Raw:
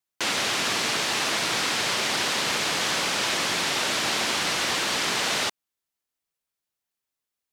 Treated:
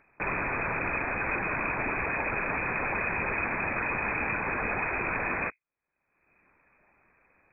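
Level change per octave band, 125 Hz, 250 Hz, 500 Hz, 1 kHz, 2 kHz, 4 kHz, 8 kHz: +2.5 dB, -2.0 dB, -2.5 dB, -2.5 dB, -2.0 dB, under -40 dB, under -40 dB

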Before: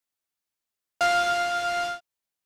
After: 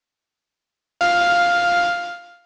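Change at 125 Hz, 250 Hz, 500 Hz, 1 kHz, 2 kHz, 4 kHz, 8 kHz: no reading, +10.5 dB, +8.0 dB, +7.5 dB, +7.0 dB, +5.5 dB, +0.5 dB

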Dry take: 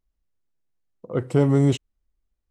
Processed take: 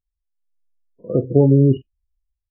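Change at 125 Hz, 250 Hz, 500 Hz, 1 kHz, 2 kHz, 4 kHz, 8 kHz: +5.5 dB, +5.0 dB, +6.0 dB, -2.5 dB, under -25 dB, under -10 dB, under -35 dB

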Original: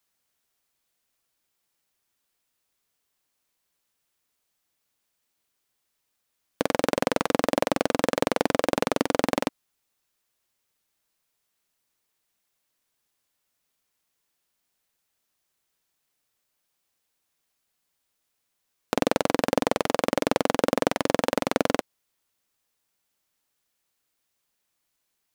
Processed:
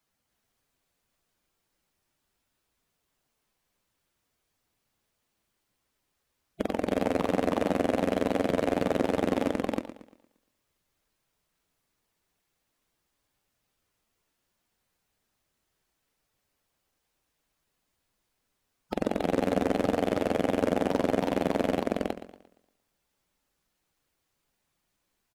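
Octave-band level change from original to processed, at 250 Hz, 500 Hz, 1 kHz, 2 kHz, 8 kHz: 0.0 dB, -2.0 dB, -4.5 dB, -6.0 dB, -11.0 dB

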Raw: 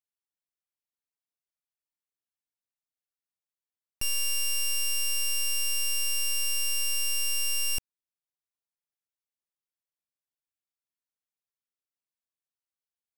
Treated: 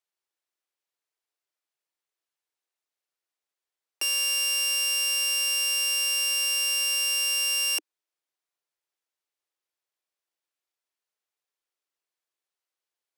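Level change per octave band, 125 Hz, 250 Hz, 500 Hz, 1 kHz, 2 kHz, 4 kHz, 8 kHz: under -40 dB, no reading, +7.0 dB, +7.0 dB, +6.5 dB, +5.5 dB, +3.0 dB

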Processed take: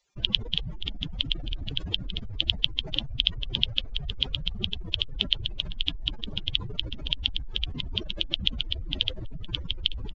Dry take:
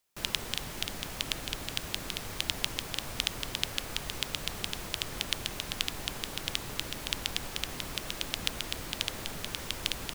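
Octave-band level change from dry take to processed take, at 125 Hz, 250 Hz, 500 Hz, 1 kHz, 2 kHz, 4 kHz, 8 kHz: +7.5 dB, +3.0 dB, -3.0 dB, -10.5 dB, -1.0 dB, +7.5 dB, under -20 dB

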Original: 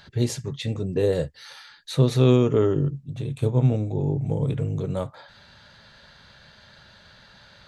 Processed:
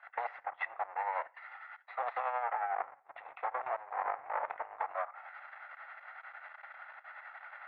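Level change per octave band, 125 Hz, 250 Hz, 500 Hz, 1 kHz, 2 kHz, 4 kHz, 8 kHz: under -40 dB, under -40 dB, -18.5 dB, +6.5 dB, +2.0 dB, under -25 dB, no reading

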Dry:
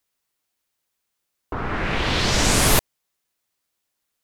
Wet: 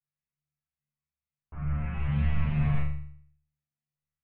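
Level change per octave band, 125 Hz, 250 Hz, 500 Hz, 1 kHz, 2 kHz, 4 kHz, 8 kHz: -0.5 dB, -7.0 dB, -22.0 dB, -18.5 dB, -18.5 dB, under -30 dB, under -40 dB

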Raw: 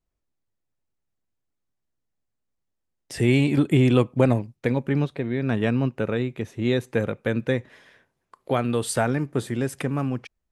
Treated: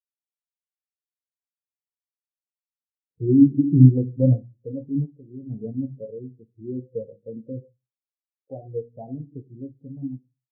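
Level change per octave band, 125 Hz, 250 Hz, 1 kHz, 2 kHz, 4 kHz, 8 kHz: +2.0 dB, +1.5 dB, under -20 dB, under -40 dB, under -40 dB, under -40 dB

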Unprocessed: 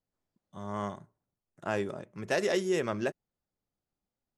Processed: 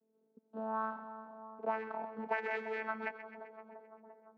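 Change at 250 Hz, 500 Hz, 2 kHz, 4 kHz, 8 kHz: -10.5 dB, -8.5 dB, -2.5 dB, -16.5 dB, under -30 dB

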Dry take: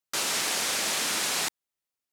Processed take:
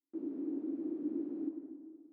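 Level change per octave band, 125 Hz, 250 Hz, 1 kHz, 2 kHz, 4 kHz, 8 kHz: under -10 dB, +8.5 dB, under -30 dB, under -40 dB, under -40 dB, under -40 dB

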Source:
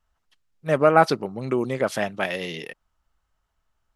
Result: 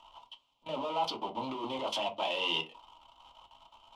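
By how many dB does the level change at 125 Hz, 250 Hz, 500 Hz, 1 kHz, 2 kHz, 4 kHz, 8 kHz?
-21.5 dB, -14.0 dB, -15.0 dB, -10.0 dB, -12.0 dB, +3.0 dB, -10.5 dB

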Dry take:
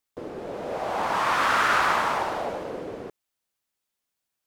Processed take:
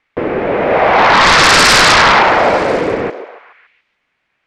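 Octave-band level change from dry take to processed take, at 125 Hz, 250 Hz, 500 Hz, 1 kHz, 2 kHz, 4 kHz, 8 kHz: +19.5 dB, +18.0 dB, +18.0 dB, +14.5 dB, +17.0 dB, +22.5 dB, +23.0 dB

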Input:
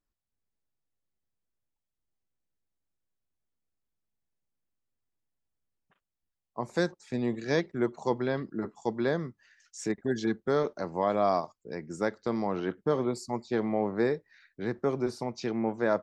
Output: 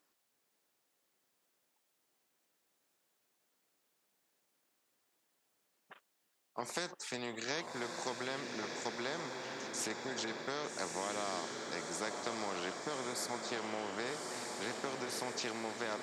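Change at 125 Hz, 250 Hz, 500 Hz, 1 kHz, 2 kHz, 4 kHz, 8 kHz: -16.0 dB, -13.5 dB, -12.0 dB, -6.5 dB, -2.5 dB, +4.0 dB, +7.0 dB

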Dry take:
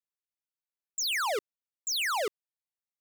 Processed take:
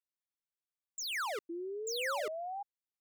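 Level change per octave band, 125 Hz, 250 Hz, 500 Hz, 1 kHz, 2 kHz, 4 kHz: no reading, +6.0 dB, -2.0 dB, -5.0 dB, -6.0 dB, -8.5 dB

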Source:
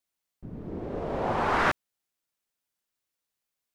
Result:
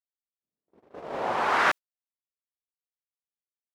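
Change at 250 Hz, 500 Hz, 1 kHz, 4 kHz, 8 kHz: -7.5 dB, -2.0 dB, +1.5 dB, +3.5 dB, +4.0 dB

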